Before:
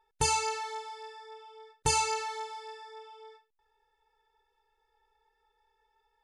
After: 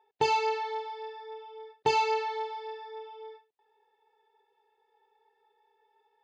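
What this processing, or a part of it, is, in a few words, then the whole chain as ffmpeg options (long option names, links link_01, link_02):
kitchen radio: -af "highpass=210,equalizer=frequency=410:width_type=q:width=4:gain=7,equalizer=frequency=720:width_type=q:width=4:gain=9,equalizer=frequency=1400:width_type=q:width=4:gain=-7,lowpass=frequency=4100:width=0.5412,lowpass=frequency=4100:width=1.3066,volume=1.5dB"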